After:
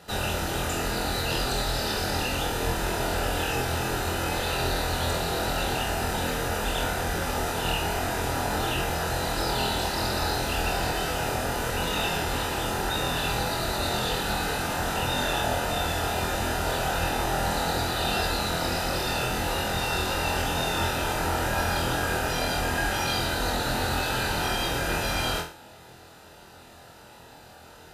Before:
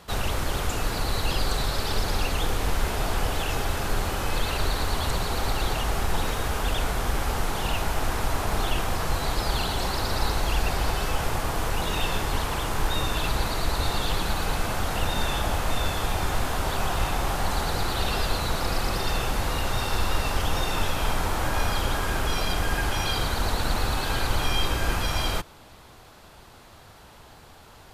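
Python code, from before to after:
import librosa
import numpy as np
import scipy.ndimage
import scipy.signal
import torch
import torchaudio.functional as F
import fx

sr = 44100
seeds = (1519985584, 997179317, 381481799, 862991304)

p1 = fx.notch_comb(x, sr, f0_hz=1100.0)
y = p1 + fx.room_flutter(p1, sr, wall_m=4.1, rt60_s=0.39, dry=0)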